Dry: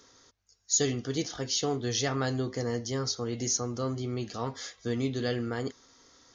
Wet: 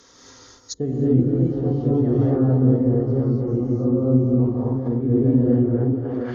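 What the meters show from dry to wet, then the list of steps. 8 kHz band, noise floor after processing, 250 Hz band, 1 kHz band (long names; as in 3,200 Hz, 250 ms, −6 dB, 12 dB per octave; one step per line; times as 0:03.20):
below −10 dB, −50 dBFS, +15.5 dB, +0.5 dB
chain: delay that swaps between a low-pass and a high-pass 238 ms, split 1,700 Hz, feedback 69%, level −6 dB
reverb whose tail is shaped and stops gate 310 ms rising, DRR −7 dB
treble cut that deepens with the level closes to 380 Hz, closed at −23.5 dBFS
level +6 dB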